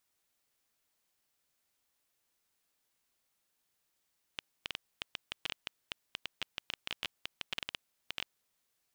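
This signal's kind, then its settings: random clicks 9.9 per s -18 dBFS 3.96 s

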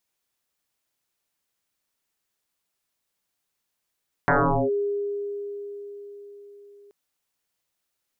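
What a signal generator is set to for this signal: FM tone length 2.63 s, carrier 406 Hz, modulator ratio 0.35, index 10, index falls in 0.42 s linear, decay 4.78 s, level -15.5 dB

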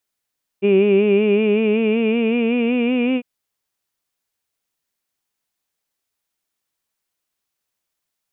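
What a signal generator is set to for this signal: formant vowel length 2.60 s, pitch 195 Hz, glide +4.5 st, vibrato depth 0.7 st, F1 380 Hz, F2 2.4 kHz, F3 2.8 kHz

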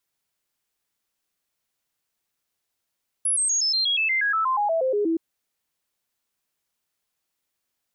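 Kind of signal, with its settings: stepped sine 10.5 kHz down, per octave 3, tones 16, 0.12 s, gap 0.00 s -19.5 dBFS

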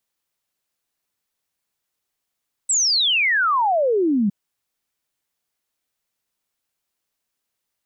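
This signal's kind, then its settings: log sweep 8.1 kHz -> 190 Hz 1.61 s -15.5 dBFS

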